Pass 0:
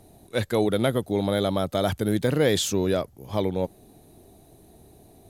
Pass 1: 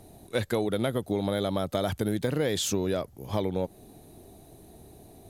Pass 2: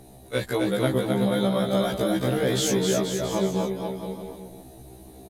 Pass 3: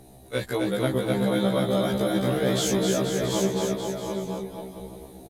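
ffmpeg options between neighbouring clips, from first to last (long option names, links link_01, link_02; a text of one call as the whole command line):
ffmpeg -i in.wav -af "acompressor=threshold=-25dB:ratio=6,volume=1.5dB" out.wav
ffmpeg -i in.wav -af "aecho=1:1:260|481|668.8|828.5|964.2:0.631|0.398|0.251|0.158|0.1,afftfilt=real='re*1.73*eq(mod(b,3),0)':imag='im*1.73*eq(mod(b,3),0)':win_size=2048:overlap=0.75,volume=5dB" out.wav
ffmpeg -i in.wav -af "aecho=1:1:735:0.562,volume=-1.5dB" out.wav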